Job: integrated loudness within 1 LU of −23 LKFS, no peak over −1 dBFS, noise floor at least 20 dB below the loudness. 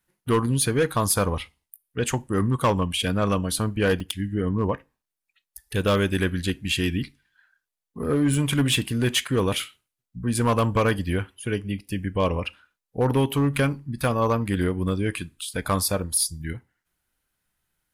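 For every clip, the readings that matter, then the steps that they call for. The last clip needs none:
share of clipped samples 0.8%; peaks flattened at −14.5 dBFS; number of dropouts 2; longest dropout 3.2 ms; integrated loudness −24.5 LKFS; sample peak −14.5 dBFS; target loudness −23.0 LKFS
→ clipped peaks rebuilt −14.5 dBFS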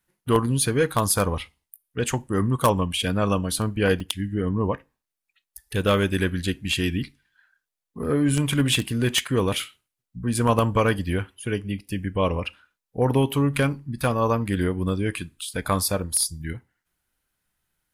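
share of clipped samples 0.0%; number of dropouts 2; longest dropout 3.2 ms
→ repair the gap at 0:04.00/0:11.79, 3.2 ms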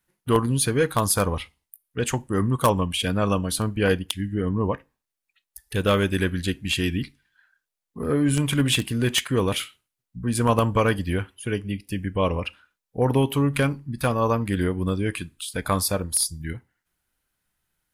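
number of dropouts 0; integrated loudness −24.0 LKFS; sample peak −5.5 dBFS; target loudness −23.0 LKFS
→ level +1 dB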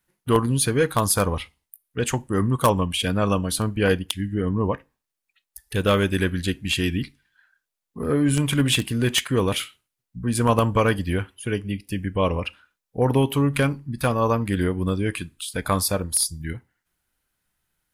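integrated loudness −23.0 LKFS; sample peak −4.5 dBFS; background noise floor −84 dBFS

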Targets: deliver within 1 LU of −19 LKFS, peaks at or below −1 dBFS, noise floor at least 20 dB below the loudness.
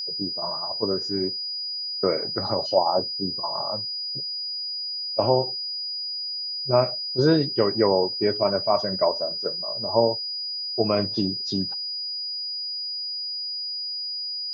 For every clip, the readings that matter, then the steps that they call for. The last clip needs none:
crackle rate 41 per second; interfering tone 4,900 Hz; level of the tone −28 dBFS; integrated loudness −24.5 LKFS; sample peak −5.0 dBFS; target loudness −19.0 LKFS
→ click removal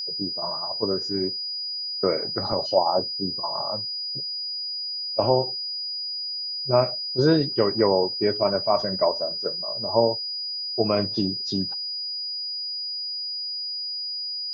crackle rate 0 per second; interfering tone 4,900 Hz; level of the tone −28 dBFS
→ notch filter 4,900 Hz, Q 30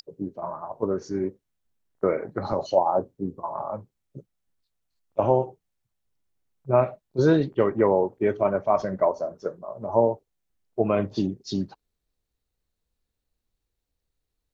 interfering tone none found; integrated loudness −25.5 LKFS; sample peak −5.5 dBFS; target loudness −19.0 LKFS
→ level +6.5 dB
brickwall limiter −1 dBFS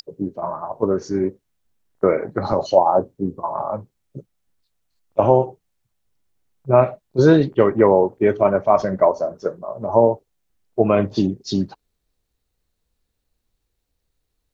integrated loudness −19.0 LKFS; sample peak −1.0 dBFS; background noise floor −75 dBFS

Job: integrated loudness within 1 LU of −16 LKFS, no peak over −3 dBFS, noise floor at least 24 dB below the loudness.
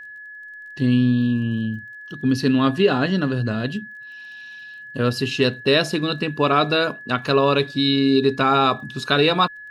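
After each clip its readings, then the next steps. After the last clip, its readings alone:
crackle rate 24 per second; interfering tone 1,700 Hz; level of the tone −36 dBFS; integrated loudness −20.0 LKFS; sample peak −4.5 dBFS; target loudness −16.0 LKFS
→ click removal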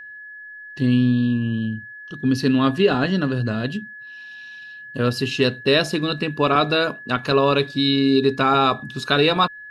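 crackle rate 0 per second; interfering tone 1,700 Hz; level of the tone −36 dBFS
→ notch filter 1,700 Hz, Q 30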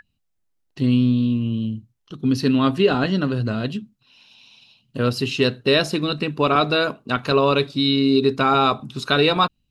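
interfering tone none found; integrated loudness −20.0 LKFS; sample peak −5.5 dBFS; target loudness −16.0 LKFS
→ level +4 dB
brickwall limiter −3 dBFS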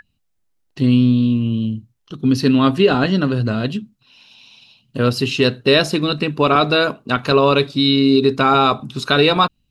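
integrated loudness −16.5 LKFS; sample peak −3.0 dBFS; background noise floor −68 dBFS

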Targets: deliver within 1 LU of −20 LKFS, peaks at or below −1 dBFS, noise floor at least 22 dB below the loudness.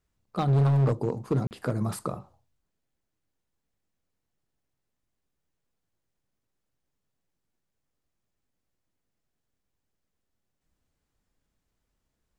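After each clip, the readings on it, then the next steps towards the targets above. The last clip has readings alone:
share of clipped samples 1.0%; peaks flattened at −19.0 dBFS; number of dropouts 1; longest dropout 39 ms; integrated loudness −27.0 LKFS; sample peak −19.0 dBFS; target loudness −20.0 LKFS
→ clipped peaks rebuilt −19 dBFS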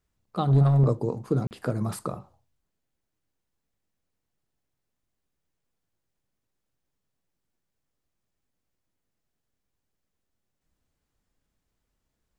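share of clipped samples 0.0%; number of dropouts 1; longest dropout 39 ms
→ repair the gap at 0:01.47, 39 ms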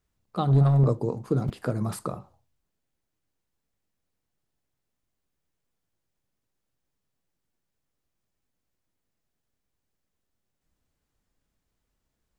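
number of dropouts 0; integrated loudness −25.0 LKFS; sample peak −11.5 dBFS; target loudness −20.0 LKFS
→ level +5 dB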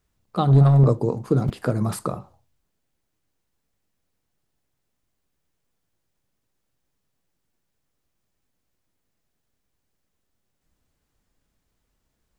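integrated loudness −20.0 LKFS; sample peak −6.5 dBFS; background noise floor −76 dBFS

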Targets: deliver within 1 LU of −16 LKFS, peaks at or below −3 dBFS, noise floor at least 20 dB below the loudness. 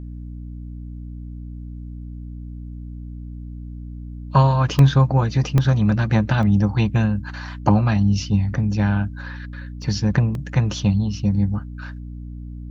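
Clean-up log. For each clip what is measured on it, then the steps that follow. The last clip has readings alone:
number of dropouts 5; longest dropout 1.4 ms; mains hum 60 Hz; hum harmonics up to 300 Hz; level of the hum −31 dBFS; integrated loudness −19.5 LKFS; sample peak −1.5 dBFS; target loudness −16.0 LKFS
→ repair the gap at 0:04.79/0:05.58/0:06.43/0:09.82/0:10.35, 1.4 ms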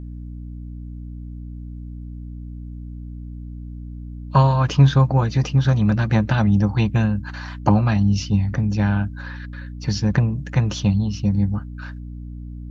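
number of dropouts 0; mains hum 60 Hz; hum harmonics up to 300 Hz; level of the hum −31 dBFS
→ mains-hum notches 60/120/180/240/300 Hz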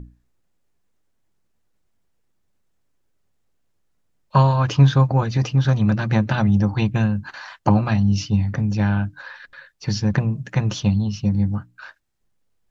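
mains hum none found; integrated loudness −20.0 LKFS; sample peak −2.0 dBFS; target loudness −16.0 LKFS
→ level +4 dB
brickwall limiter −3 dBFS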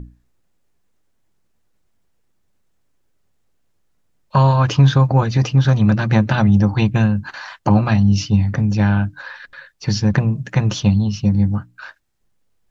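integrated loudness −16.5 LKFS; sample peak −3.0 dBFS; background noise floor −63 dBFS

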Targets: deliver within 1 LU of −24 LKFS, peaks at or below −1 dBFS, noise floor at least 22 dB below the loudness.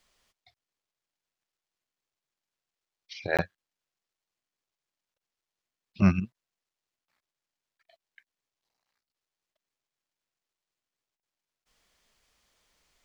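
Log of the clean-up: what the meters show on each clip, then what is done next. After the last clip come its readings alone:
number of dropouts 1; longest dropout 17 ms; integrated loudness −28.5 LKFS; sample peak −10.0 dBFS; target loudness −24.0 LKFS
→ repair the gap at 0:03.37, 17 ms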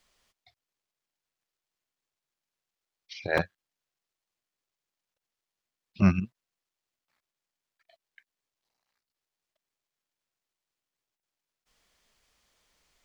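number of dropouts 0; integrated loudness −28.5 LKFS; sample peak −10.0 dBFS; target loudness −24.0 LKFS
→ level +4.5 dB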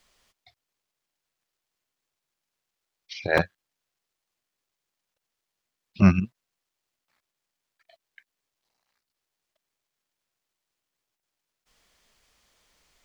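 integrated loudness −24.0 LKFS; sample peak −5.5 dBFS; background noise floor −85 dBFS

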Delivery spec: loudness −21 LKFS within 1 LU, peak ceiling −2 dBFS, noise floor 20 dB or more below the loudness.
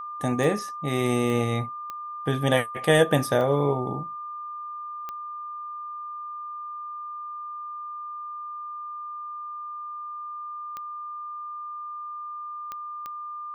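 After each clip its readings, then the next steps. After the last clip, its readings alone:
number of clicks 8; interfering tone 1,200 Hz; level of the tone −33 dBFS; integrated loudness −29.0 LKFS; sample peak −6.5 dBFS; target loudness −21.0 LKFS
→ click removal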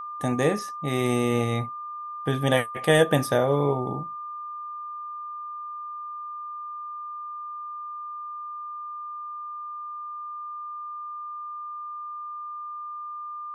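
number of clicks 0; interfering tone 1,200 Hz; level of the tone −33 dBFS
→ notch filter 1,200 Hz, Q 30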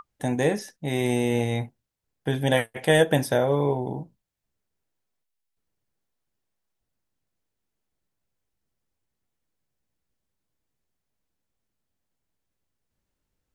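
interfering tone none found; integrated loudness −24.5 LKFS; sample peak −6.5 dBFS; target loudness −21.0 LKFS
→ level +3.5 dB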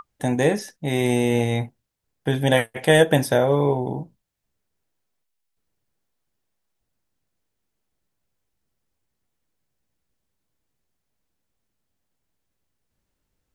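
integrated loudness −21.0 LKFS; sample peak −3.0 dBFS; background noise floor −79 dBFS

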